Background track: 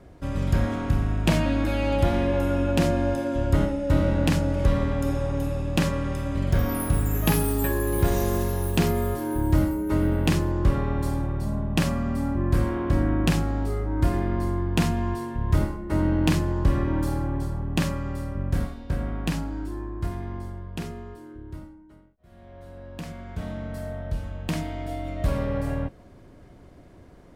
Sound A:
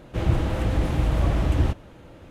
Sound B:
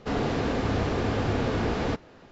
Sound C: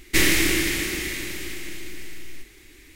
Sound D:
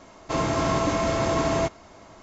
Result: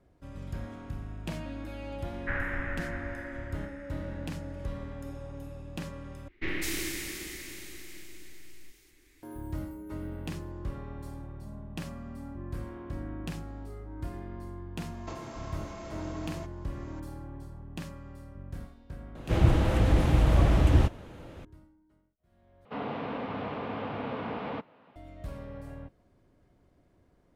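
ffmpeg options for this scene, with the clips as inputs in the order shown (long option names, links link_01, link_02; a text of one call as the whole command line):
ffmpeg -i bed.wav -i cue0.wav -i cue1.wav -i cue2.wav -i cue3.wav -filter_complex "[3:a]asplit=2[link_01][link_02];[0:a]volume=-15.5dB[link_03];[link_01]highpass=frequency=200:width_type=q:width=0.5412,highpass=frequency=200:width_type=q:width=1.307,lowpass=frequency=2200:width_type=q:width=0.5176,lowpass=frequency=2200:width_type=q:width=0.7071,lowpass=frequency=2200:width_type=q:width=1.932,afreqshift=-300[link_04];[link_02]acrossover=split=2900[link_05][link_06];[link_06]adelay=200[link_07];[link_05][link_07]amix=inputs=2:normalize=0[link_08];[4:a]acompressor=threshold=-37dB:ratio=4:attack=48:release=374:knee=1:detection=rms[link_09];[2:a]highpass=180,equalizer=frequency=360:width_type=q:width=4:gain=-10,equalizer=frequency=1000:width_type=q:width=4:gain=4,equalizer=frequency=1700:width_type=q:width=4:gain=-5,lowpass=frequency=3100:width=0.5412,lowpass=frequency=3100:width=1.3066[link_10];[link_03]asplit=3[link_11][link_12][link_13];[link_11]atrim=end=6.284[link_14];[link_08]atrim=end=2.95,asetpts=PTS-STARTPTS,volume=-12.5dB[link_15];[link_12]atrim=start=9.226:end=22.654[link_16];[link_10]atrim=end=2.31,asetpts=PTS-STARTPTS,volume=-5.5dB[link_17];[link_13]atrim=start=24.956[link_18];[link_04]atrim=end=2.95,asetpts=PTS-STARTPTS,volume=-9.5dB,afade=type=in:duration=0.004:curve=hsin,afade=type=out:start_time=2.946:duration=0.004:curve=hsin,adelay=2130[link_19];[link_09]atrim=end=2.22,asetpts=PTS-STARTPTS,volume=-6.5dB,afade=type=in:duration=0.004:curve=hsin,afade=type=out:start_time=2.216:duration=0.004:curve=hsin,adelay=14780[link_20];[1:a]atrim=end=2.3,asetpts=PTS-STARTPTS,afade=type=in:duration=0.004:curve=hsin,afade=type=out:start_time=2.296:duration=0.004:curve=hsin,adelay=19150[link_21];[link_14][link_15]acrossfade=duration=0.004:curve1=hsin:curve2=hsin[link_22];[link_22][link_16]acrossfade=duration=0.004:curve1=hsin:curve2=hsin[link_23];[link_23][link_17]acrossfade=duration=0.004:curve1=hsin:curve2=hsin[link_24];[link_24][link_18]acrossfade=duration=0.004:curve1=hsin:curve2=hsin[link_25];[link_25][link_19][link_20][link_21]amix=inputs=4:normalize=0" out.wav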